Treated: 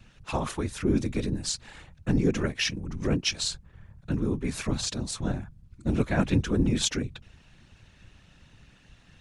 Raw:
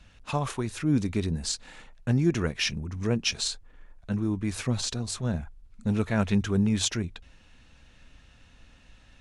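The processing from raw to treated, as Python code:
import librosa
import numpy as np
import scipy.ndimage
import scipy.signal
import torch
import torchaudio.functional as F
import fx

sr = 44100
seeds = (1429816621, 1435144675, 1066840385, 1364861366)

y = fx.whisperise(x, sr, seeds[0])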